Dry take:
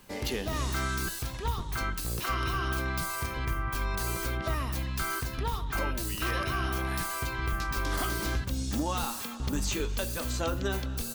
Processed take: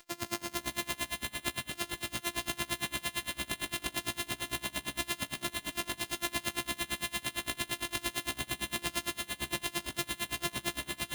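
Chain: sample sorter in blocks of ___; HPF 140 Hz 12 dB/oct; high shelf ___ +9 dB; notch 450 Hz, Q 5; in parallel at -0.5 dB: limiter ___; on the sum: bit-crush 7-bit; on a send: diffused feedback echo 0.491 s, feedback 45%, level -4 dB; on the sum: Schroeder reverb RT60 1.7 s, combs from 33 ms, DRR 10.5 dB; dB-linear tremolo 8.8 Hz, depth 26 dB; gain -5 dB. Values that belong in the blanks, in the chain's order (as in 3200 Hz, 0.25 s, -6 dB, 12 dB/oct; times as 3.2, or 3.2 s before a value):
128 samples, 2400 Hz, -16 dBFS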